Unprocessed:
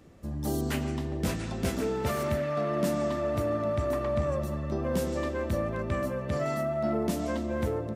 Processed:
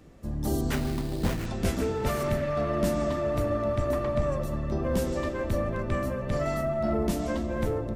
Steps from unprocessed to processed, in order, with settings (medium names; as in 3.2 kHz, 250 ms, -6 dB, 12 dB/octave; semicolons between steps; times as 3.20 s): octave divider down 2 oct, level -3 dB; 0.73–1.46 s: sample-rate reducer 4.4 kHz, jitter 20%; flange 0.92 Hz, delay 6.3 ms, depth 3.4 ms, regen -81%; trim +5.5 dB